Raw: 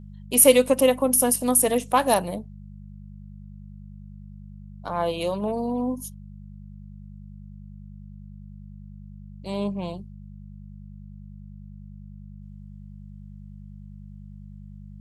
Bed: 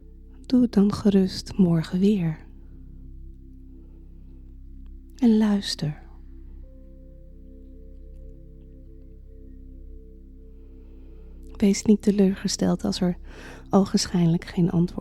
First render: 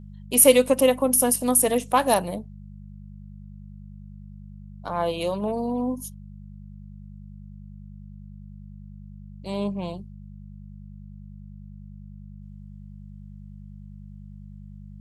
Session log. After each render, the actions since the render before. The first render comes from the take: no audible change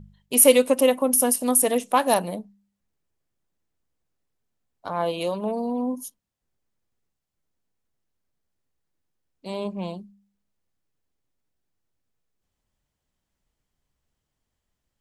de-hum 50 Hz, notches 4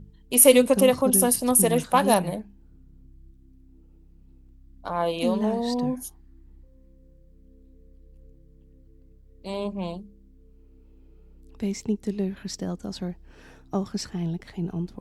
add bed -8.5 dB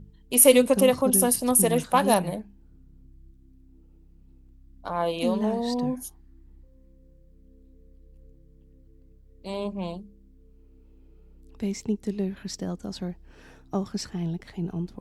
trim -1 dB

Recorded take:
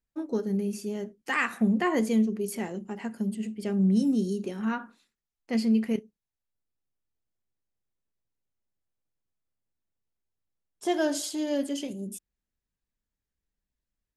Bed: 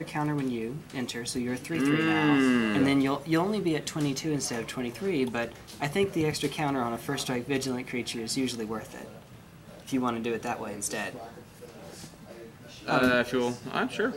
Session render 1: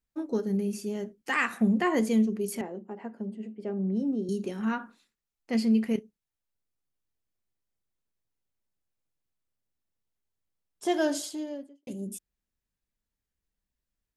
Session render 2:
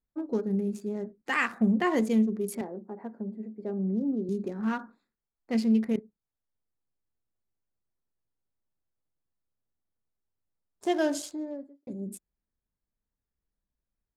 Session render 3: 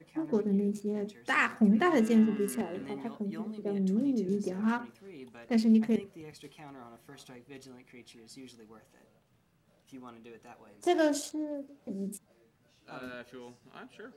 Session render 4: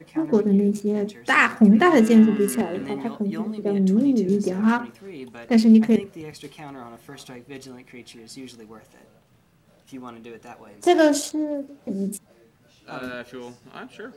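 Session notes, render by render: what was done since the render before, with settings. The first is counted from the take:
2.61–4.29 s: band-pass filter 540 Hz, Q 0.82; 11.05–11.87 s: studio fade out
local Wiener filter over 15 samples
add bed -20 dB
trim +10 dB

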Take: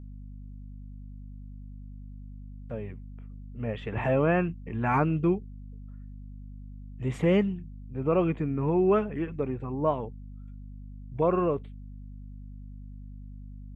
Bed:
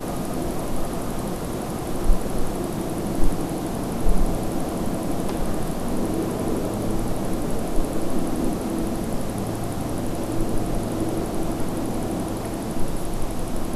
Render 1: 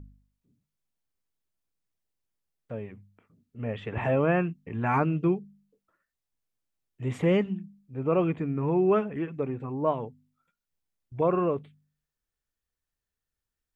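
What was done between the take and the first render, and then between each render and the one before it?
de-hum 50 Hz, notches 5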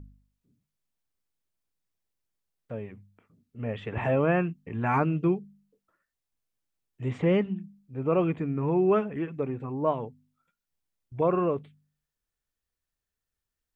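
7.10–7.57 s: distance through air 110 m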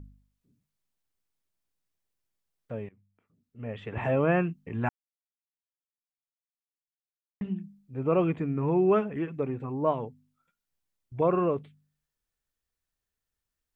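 2.89–4.33 s: fade in linear, from -18 dB; 4.89–7.41 s: mute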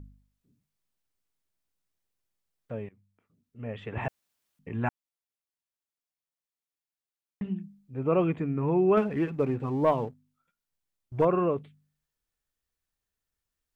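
4.08–4.59 s: room tone; 8.97–11.25 s: waveshaping leveller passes 1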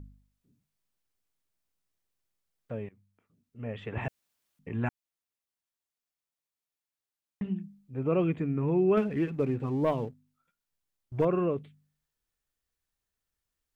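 dynamic bell 920 Hz, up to -7 dB, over -40 dBFS, Q 0.95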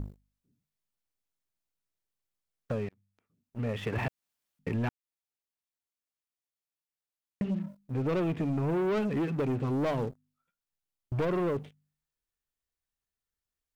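waveshaping leveller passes 3; compression 2.5:1, threshold -32 dBFS, peak gain reduction 9 dB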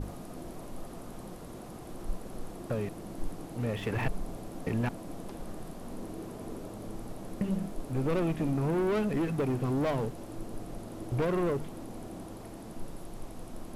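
add bed -16.5 dB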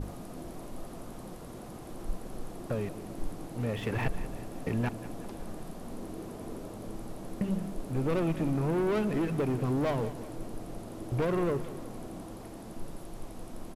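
feedback delay 186 ms, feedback 53%, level -15 dB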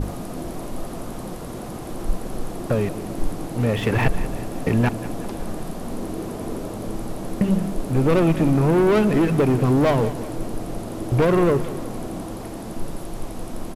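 trim +11.5 dB

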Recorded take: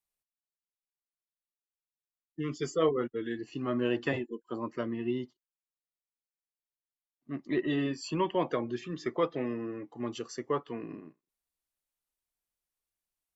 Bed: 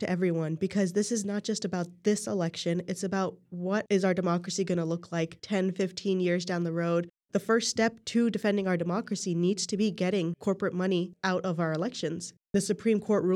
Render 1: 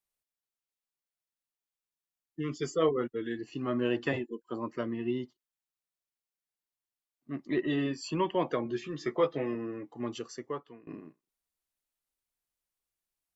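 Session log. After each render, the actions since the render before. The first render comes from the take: 8.64–9.55 s: doubling 14 ms -5.5 dB; 10.14–10.87 s: fade out, to -22.5 dB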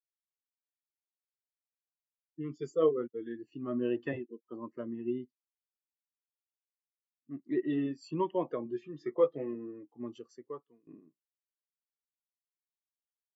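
spectral contrast expander 1.5:1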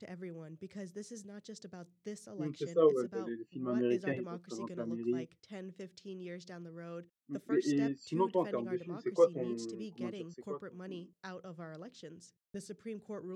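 add bed -18 dB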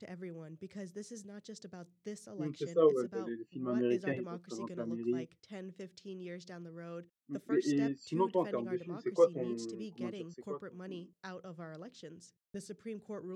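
no audible change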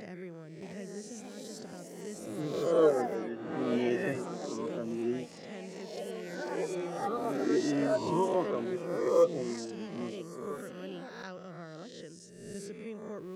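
reverse spectral sustain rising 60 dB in 1.09 s; ever faster or slower copies 625 ms, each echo +4 st, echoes 2, each echo -6 dB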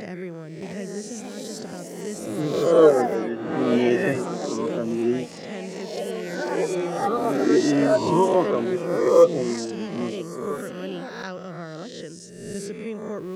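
trim +10 dB

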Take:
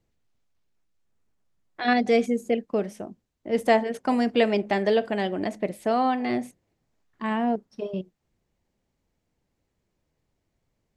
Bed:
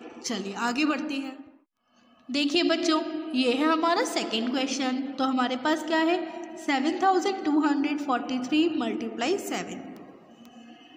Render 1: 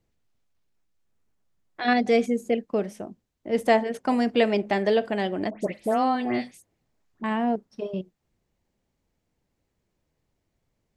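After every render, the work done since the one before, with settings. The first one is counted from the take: 5.50–7.24 s: phase dispersion highs, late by 115 ms, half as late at 2 kHz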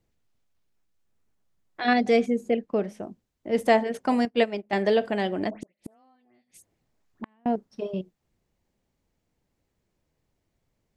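2.19–3.03 s: treble shelf 5.3 kHz -9.5 dB; 4.25–4.73 s: upward expansion 2.5:1, over -33 dBFS; 5.58–7.46 s: inverted gate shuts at -23 dBFS, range -38 dB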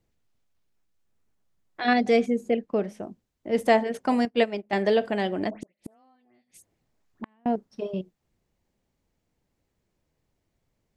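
no audible change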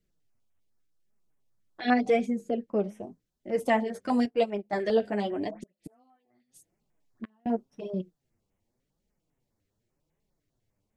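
flange 0.88 Hz, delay 4.6 ms, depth 5.8 ms, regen +3%; step-sequenced notch 10 Hz 870–4500 Hz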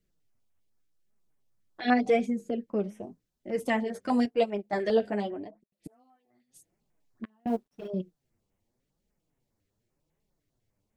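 2.25–3.84 s: dynamic bell 720 Hz, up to -6 dB, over -39 dBFS, Q 1.2; 5.05–5.72 s: studio fade out; 7.47–7.88 s: companding laws mixed up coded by A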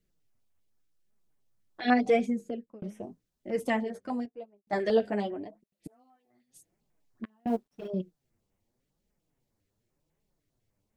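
2.34–2.82 s: fade out; 3.54–4.67 s: studio fade out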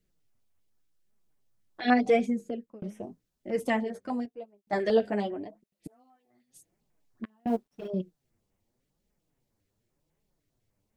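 trim +1 dB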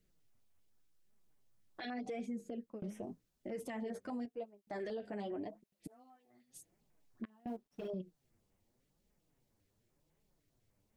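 compression 5:1, threshold -34 dBFS, peak gain reduction 15 dB; peak limiter -34.5 dBFS, peak gain reduction 10 dB

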